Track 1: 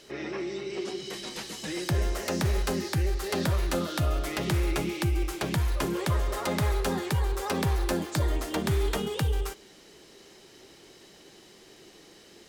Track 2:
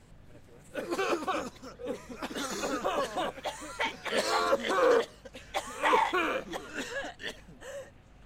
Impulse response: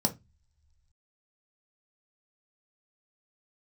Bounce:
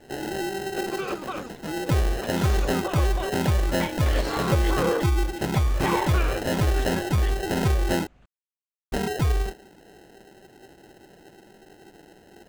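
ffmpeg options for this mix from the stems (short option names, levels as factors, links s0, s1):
-filter_complex "[0:a]lowpass=1300,acrusher=samples=38:mix=1:aa=0.000001,acontrast=30,volume=0.944,asplit=3[s0][s1][s2];[s0]atrim=end=8.07,asetpts=PTS-STARTPTS,afade=t=out:st=8.066:d=0.004:c=hsin[s3];[s1]atrim=start=8.07:end=8.92,asetpts=PTS-STARTPTS,volume=0[s4];[s2]atrim=start=8.92,asetpts=PTS-STARTPTS,afade=t=in:d=0.004:c=hsin[s5];[s3][s4][s5]concat=n=3:v=0:a=1[s6];[1:a]highshelf=f=8700:g=-12,volume=0.841[s7];[s6][s7]amix=inputs=2:normalize=0"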